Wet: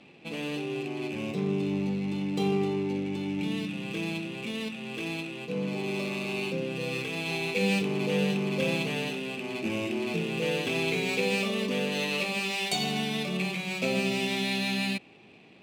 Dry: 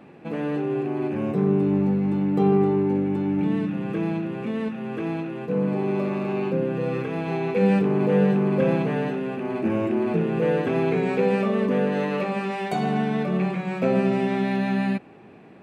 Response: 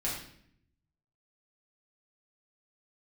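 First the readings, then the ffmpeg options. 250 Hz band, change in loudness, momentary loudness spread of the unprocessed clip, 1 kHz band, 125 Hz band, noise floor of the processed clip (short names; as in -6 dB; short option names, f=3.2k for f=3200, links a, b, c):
-8.0 dB, -6.0 dB, 8 LU, -8.0 dB, -8.0 dB, -54 dBFS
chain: -af "aexciter=amount=11.8:drive=3.8:freq=2.4k,adynamicsmooth=sensitivity=7.5:basefreq=3k,volume=-8dB"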